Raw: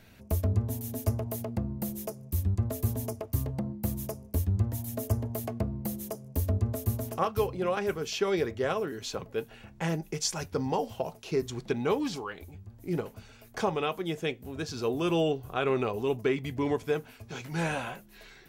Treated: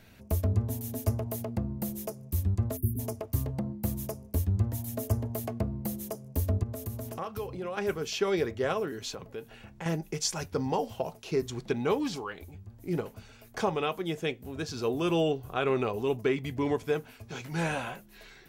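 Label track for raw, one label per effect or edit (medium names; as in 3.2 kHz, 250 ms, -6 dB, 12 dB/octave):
2.770000	2.990000	spectral selection erased 430–9200 Hz
6.630000	7.780000	compression 2.5:1, threshold -35 dBFS
9.110000	9.860000	compression 2.5:1, threshold -38 dBFS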